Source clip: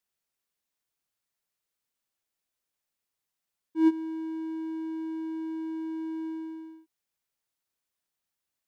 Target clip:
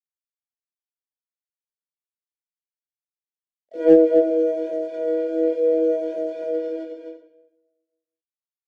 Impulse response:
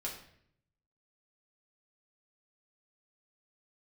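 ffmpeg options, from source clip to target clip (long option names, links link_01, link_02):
-filter_complex "[0:a]flanger=delay=15:depth=6:speed=0.69,bandreject=frequency=60:width_type=h:width=6,bandreject=frequency=120:width_type=h:width=6,bandreject=frequency=180:width_type=h:width=6,bandreject=frequency=240:width_type=h:width=6,bandreject=frequency=300:width_type=h:width=6,bandreject=frequency=360:width_type=h:width=6,bandreject=frequency=420:width_type=h:width=6,bandreject=frequency=480:width_type=h:width=6,bandreject=frequency=540:width_type=h:width=6,bandreject=frequency=600:width_type=h:width=6,asplit=2[link_01][link_02];[link_02]acompressor=threshold=-49dB:ratio=5,volume=-1.5dB[link_03];[link_01][link_03]amix=inputs=2:normalize=0,acrusher=bits=7:mix=0:aa=0.000001[link_04];[1:a]atrim=start_sample=2205,asetrate=35721,aresample=44100[link_05];[link_04][link_05]afir=irnorm=-1:irlink=0,asplit=3[link_06][link_07][link_08];[link_07]asetrate=66075,aresample=44100,atempo=0.66742,volume=0dB[link_09];[link_08]asetrate=88200,aresample=44100,atempo=0.5,volume=-6dB[link_10];[link_06][link_09][link_10]amix=inputs=3:normalize=0,highpass=170,lowpass=3600,aecho=1:1:257:0.562,acrossover=split=490|1300[link_11][link_12][link_13];[link_12]aeval=exprs='0.0473*(abs(mod(val(0)/0.0473+3,4)-2)-1)':channel_layout=same[link_14];[link_11][link_14][link_13]amix=inputs=3:normalize=0,lowshelf=frequency=770:width_type=q:width=3:gain=10,volume=-3dB"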